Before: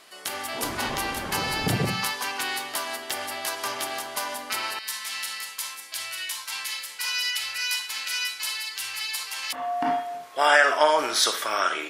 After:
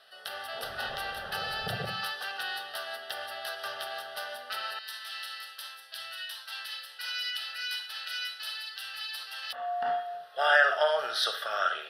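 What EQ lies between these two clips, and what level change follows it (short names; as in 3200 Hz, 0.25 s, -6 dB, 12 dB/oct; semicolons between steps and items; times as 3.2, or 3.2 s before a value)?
low shelf 470 Hz -11 dB; high shelf 5400 Hz -12 dB; fixed phaser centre 1500 Hz, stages 8; 0.0 dB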